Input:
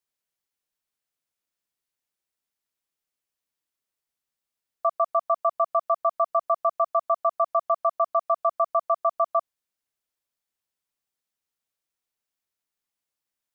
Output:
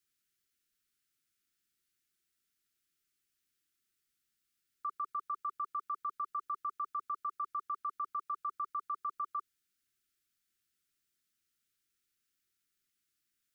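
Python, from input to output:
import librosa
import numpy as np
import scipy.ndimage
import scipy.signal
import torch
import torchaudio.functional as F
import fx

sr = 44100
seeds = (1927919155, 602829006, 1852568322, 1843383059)

y = scipy.signal.sosfilt(scipy.signal.ellip(3, 1.0, 40, [390.0, 1300.0], 'bandstop', fs=sr, output='sos'), x)
y = fx.level_steps(y, sr, step_db=24)
y = y * librosa.db_to_amplitude(12.5)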